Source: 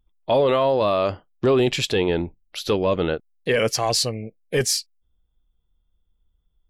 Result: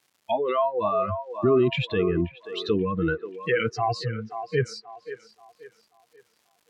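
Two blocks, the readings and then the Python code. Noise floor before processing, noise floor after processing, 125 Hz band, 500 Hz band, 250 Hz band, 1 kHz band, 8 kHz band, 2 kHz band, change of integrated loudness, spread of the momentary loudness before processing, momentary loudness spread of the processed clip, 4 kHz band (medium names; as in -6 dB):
-70 dBFS, -69 dBFS, -1.0 dB, -4.0 dB, -1.5 dB, -1.5 dB, under -20 dB, -2.5 dB, -4.0 dB, 8 LU, 12 LU, -10.0 dB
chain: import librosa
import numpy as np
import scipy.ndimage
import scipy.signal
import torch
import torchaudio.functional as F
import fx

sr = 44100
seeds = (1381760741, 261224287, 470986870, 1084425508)

p1 = fx.bin_expand(x, sr, power=2.0)
p2 = fx.over_compress(p1, sr, threshold_db=-30.0, ratio=-1.0)
p3 = p1 + (p2 * 10.0 ** (-2.0 / 20.0))
p4 = scipy.signal.sosfilt(scipy.signal.butter(2, 10000.0, 'lowpass', fs=sr, output='sos'), p3)
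p5 = fx.noise_reduce_blind(p4, sr, reduce_db=22)
p6 = fx.dmg_crackle(p5, sr, seeds[0], per_s=450.0, level_db=-52.0)
p7 = scipy.signal.sosfilt(scipy.signal.butter(2, 86.0, 'highpass', fs=sr, output='sos'), p6)
p8 = p7 + fx.echo_wet_bandpass(p7, sr, ms=533, feedback_pct=34, hz=840.0, wet_db=-8.5, dry=0)
y = fx.env_lowpass_down(p8, sr, base_hz=2100.0, full_db=-23.5)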